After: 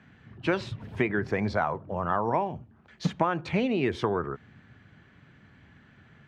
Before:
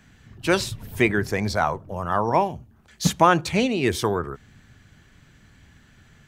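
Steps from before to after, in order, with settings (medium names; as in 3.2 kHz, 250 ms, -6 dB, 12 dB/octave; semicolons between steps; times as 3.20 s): compression 10:1, threshold -21 dBFS, peak gain reduction 11 dB; band-pass 100–2500 Hz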